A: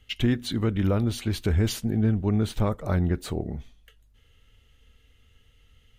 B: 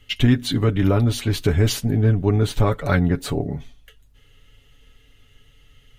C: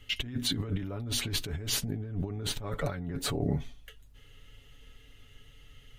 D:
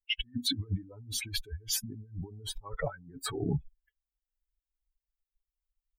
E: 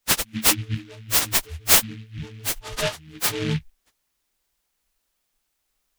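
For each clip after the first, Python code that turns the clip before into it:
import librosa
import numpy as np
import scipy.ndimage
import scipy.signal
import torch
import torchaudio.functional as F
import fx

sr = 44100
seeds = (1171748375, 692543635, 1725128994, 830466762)

y1 = fx.spec_box(x, sr, start_s=2.69, length_s=0.28, low_hz=1300.0, high_hz=4600.0, gain_db=8)
y1 = y1 + 0.59 * np.pad(y1, (int(7.1 * sr / 1000.0), 0))[:len(y1)]
y1 = y1 * 10.0 ** (5.5 / 20.0)
y2 = fx.over_compress(y1, sr, threshold_db=-26.0, ratio=-1.0)
y2 = y2 * 10.0 ** (-7.5 / 20.0)
y3 = fx.bin_expand(y2, sr, power=3.0)
y3 = y3 * 10.0 ** (4.0 / 20.0)
y4 = fx.freq_snap(y3, sr, grid_st=6)
y4 = fx.noise_mod_delay(y4, sr, seeds[0], noise_hz=2400.0, depth_ms=0.18)
y4 = y4 * 10.0 ** (6.0 / 20.0)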